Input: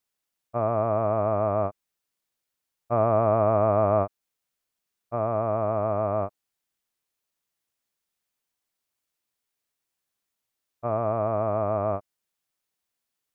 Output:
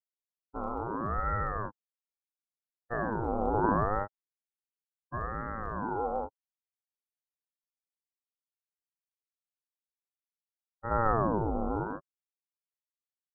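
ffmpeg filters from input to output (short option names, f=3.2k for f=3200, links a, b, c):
-filter_complex "[0:a]asettb=1/sr,asplit=3[a][b][c];[a]atrim=end=10.914[d];[b]atrim=start=10.91:end=11.84,asetpts=PTS-STARTPTS,afade=t=in:d=0.004:c=qsin,afade=t=out:st=0.926:d=0.004:c=qsin,tiltshelf=f=1.1k:g=7[e];[c]atrim=start=11.836[f];[d][e]acrossfade=d=0.004:c1=hsin:c2=qsin[g];[g][f]acrossfade=d=0.004:c1=qsin:c2=hsin,afftdn=nr=21:nf=-35,aphaser=in_gain=1:out_gain=1:delay=2.2:decay=0.52:speed=0.27:type=triangular,aeval=exprs='val(0)*sin(2*PI*420*n/s+420*0.7/0.73*sin(2*PI*0.73*n/s))':c=same,volume=-7dB"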